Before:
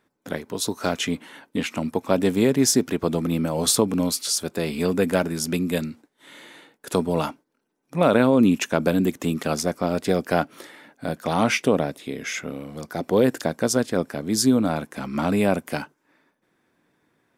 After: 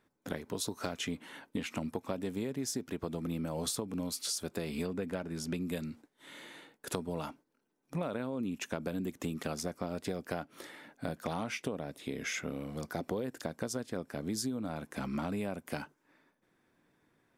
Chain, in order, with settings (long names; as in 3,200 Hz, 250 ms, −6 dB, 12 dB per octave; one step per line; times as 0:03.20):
low-shelf EQ 72 Hz +9 dB
downward compressor 12 to 1, threshold −27 dBFS, peak gain reduction 15.5 dB
0:04.86–0:05.59: high-shelf EQ 5,800 Hz → 8,700 Hz −11.5 dB
level −5 dB